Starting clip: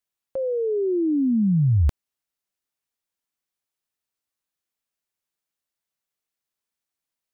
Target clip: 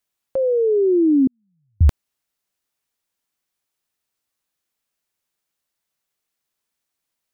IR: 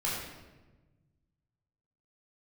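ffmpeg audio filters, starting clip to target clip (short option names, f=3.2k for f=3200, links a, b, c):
-filter_complex "[0:a]asettb=1/sr,asplit=3[a][b][c];[a]atrim=end=1.274[d];[b]atrim=start=1.27:end=1.81,asetpts=PTS-STARTPTS,afade=t=in:d=0.004:c=qsin,afade=t=out:st=0.536:d=0.004:c=qsin,agate=range=-54dB:threshold=-6dB:ratio=16:detection=peak[e];[c]atrim=start=1.806[f];[d][e]acrossfade=d=0.004:c1=hsin:c2=qsin[g];[g][f]acrossfade=d=0.004:c1=qsin:c2=hsin,volume=6.5dB"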